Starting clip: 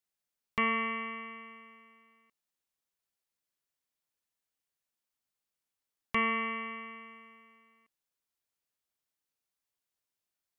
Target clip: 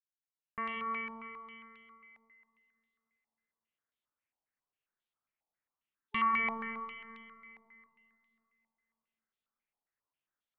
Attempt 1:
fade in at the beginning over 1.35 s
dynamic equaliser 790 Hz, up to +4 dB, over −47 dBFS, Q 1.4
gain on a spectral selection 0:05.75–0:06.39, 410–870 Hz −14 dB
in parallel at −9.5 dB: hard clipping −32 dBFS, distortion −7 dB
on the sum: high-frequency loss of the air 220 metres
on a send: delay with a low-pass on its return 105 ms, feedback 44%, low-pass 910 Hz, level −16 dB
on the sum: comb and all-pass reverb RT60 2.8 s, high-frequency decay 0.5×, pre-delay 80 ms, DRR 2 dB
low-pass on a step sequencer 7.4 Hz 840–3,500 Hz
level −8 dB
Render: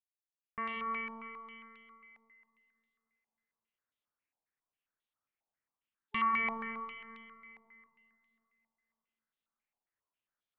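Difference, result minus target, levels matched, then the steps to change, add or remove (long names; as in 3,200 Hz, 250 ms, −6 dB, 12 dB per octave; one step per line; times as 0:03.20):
hard clipping: distortion +10 dB
change: hard clipping −24 dBFS, distortion −17 dB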